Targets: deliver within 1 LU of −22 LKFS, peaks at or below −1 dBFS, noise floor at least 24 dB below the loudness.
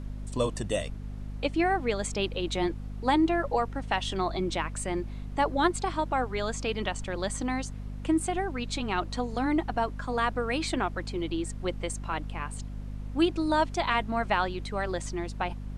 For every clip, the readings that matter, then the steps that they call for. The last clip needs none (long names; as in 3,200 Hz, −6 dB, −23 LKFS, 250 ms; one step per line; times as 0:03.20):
mains hum 50 Hz; hum harmonics up to 250 Hz; level of the hum −35 dBFS; background noise floor −39 dBFS; target noise floor −54 dBFS; integrated loudness −30.0 LKFS; sample peak −11.0 dBFS; target loudness −22.0 LKFS
→ mains-hum notches 50/100/150/200/250 Hz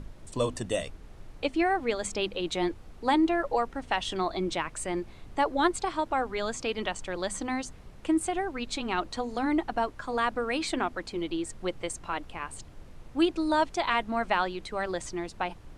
mains hum none found; background noise floor −49 dBFS; target noise floor −54 dBFS
→ noise reduction from a noise print 6 dB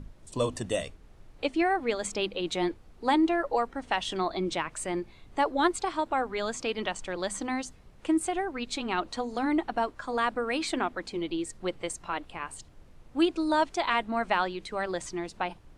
background noise floor −54 dBFS; integrated loudness −30.0 LKFS; sample peak −11.0 dBFS; target loudness −22.0 LKFS
→ level +8 dB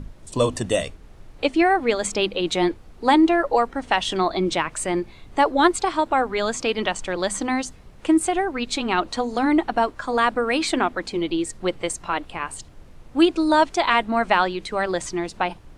integrated loudness −22.0 LKFS; sample peak −3.0 dBFS; background noise floor −46 dBFS